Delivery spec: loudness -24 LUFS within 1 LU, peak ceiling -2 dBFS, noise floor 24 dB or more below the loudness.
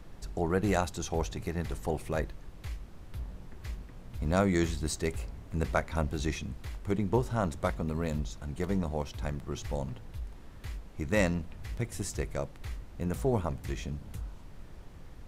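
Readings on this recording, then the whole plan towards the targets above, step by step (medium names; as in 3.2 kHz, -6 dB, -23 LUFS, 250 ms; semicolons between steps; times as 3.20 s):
noise floor -48 dBFS; noise floor target -58 dBFS; loudness -33.5 LUFS; peak level -13.0 dBFS; loudness target -24.0 LUFS
-> noise print and reduce 10 dB; trim +9.5 dB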